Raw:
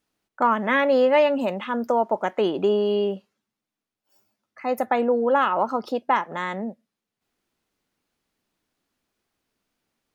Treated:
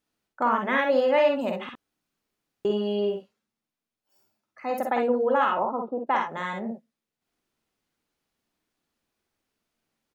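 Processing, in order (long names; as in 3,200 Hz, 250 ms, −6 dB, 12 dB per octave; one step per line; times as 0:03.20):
0:01.69–0:02.65: fill with room tone
0:05.58–0:06.07: Chebyshev band-pass filter 150–1,100 Hz, order 3
ambience of single reflections 49 ms −6 dB, 62 ms −5.5 dB
level −4.5 dB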